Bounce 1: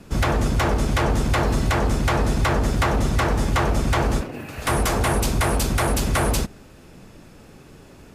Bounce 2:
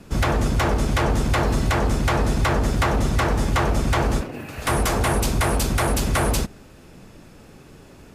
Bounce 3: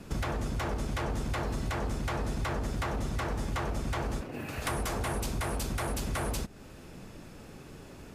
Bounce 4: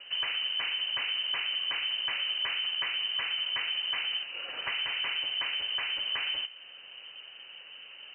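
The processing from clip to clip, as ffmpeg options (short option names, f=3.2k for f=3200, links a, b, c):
-af anull
-af "acompressor=threshold=-31dB:ratio=3,volume=-2dB"
-af "bandreject=f=65.31:t=h:w=4,bandreject=f=130.62:t=h:w=4,bandreject=f=195.93:t=h:w=4,bandreject=f=261.24:t=h:w=4,bandreject=f=326.55:t=h:w=4,bandreject=f=391.86:t=h:w=4,bandreject=f=457.17:t=h:w=4,bandreject=f=522.48:t=h:w=4,bandreject=f=587.79:t=h:w=4,bandreject=f=653.1:t=h:w=4,bandreject=f=718.41:t=h:w=4,bandreject=f=783.72:t=h:w=4,bandreject=f=849.03:t=h:w=4,bandreject=f=914.34:t=h:w=4,bandreject=f=979.65:t=h:w=4,bandreject=f=1.04496k:t=h:w=4,bandreject=f=1.11027k:t=h:w=4,bandreject=f=1.17558k:t=h:w=4,bandreject=f=1.24089k:t=h:w=4,bandreject=f=1.3062k:t=h:w=4,bandreject=f=1.37151k:t=h:w=4,bandreject=f=1.43682k:t=h:w=4,bandreject=f=1.50213k:t=h:w=4,bandreject=f=1.56744k:t=h:w=4,bandreject=f=1.63275k:t=h:w=4,bandreject=f=1.69806k:t=h:w=4,bandreject=f=1.76337k:t=h:w=4,bandreject=f=1.82868k:t=h:w=4,bandreject=f=1.89399k:t=h:w=4,bandreject=f=1.9593k:t=h:w=4,bandreject=f=2.02461k:t=h:w=4,bandreject=f=2.08992k:t=h:w=4,bandreject=f=2.15523k:t=h:w=4,bandreject=f=2.22054k:t=h:w=4,bandreject=f=2.28585k:t=h:w=4,bandreject=f=2.35116k:t=h:w=4,bandreject=f=2.41647k:t=h:w=4,lowpass=f=2.6k:t=q:w=0.5098,lowpass=f=2.6k:t=q:w=0.6013,lowpass=f=2.6k:t=q:w=0.9,lowpass=f=2.6k:t=q:w=2.563,afreqshift=-3100"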